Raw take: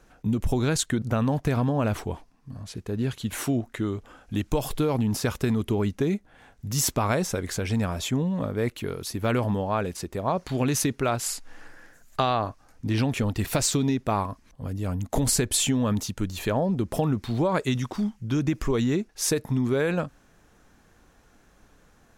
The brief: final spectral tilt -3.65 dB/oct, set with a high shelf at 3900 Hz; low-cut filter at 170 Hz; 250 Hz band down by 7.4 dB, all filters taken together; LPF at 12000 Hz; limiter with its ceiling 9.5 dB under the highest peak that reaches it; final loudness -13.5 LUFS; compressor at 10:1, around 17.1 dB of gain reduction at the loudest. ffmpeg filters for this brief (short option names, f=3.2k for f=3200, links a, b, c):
-af "highpass=170,lowpass=12k,equalizer=f=250:t=o:g=-8,highshelf=f=3.9k:g=7.5,acompressor=threshold=-33dB:ratio=10,volume=25.5dB,alimiter=limit=-1dB:level=0:latency=1"